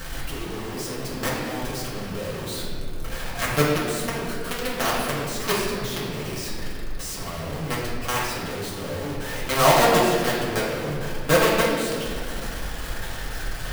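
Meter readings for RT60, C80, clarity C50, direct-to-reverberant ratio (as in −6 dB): 2.1 s, 2.0 dB, 0.0 dB, −7.5 dB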